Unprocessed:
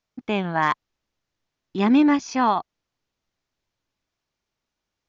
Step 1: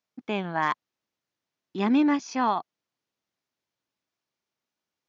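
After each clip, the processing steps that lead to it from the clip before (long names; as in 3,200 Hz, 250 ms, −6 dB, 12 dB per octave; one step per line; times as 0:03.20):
high-pass filter 150 Hz 12 dB per octave
level −4.5 dB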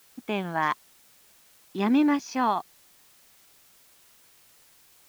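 background noise white −58 dBFS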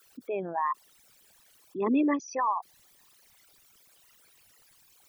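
spectral envelope exaggerated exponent 3
level −3 dB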